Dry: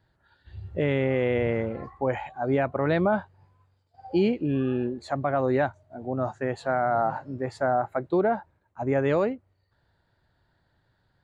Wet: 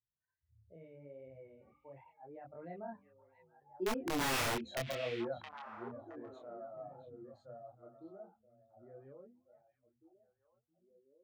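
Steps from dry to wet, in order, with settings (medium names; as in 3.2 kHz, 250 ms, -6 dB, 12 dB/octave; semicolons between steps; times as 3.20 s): spectral contrast enhancement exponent 1.7; Doppler pass-by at 4.37 s, 28 m/s, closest 2.6 m; hum notches 50/100/150/200/250/300 Hz; integer overflow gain 31.5 dB; chorus voices 2, 0.78 Hz, delay 26 ms, depth 4.3 ms; on a send: repeats whose band climbs or falls 668 ms, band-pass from 2.7 kHz, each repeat -1.4 oct, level -7 dB; on the sum: trim +5.5 dB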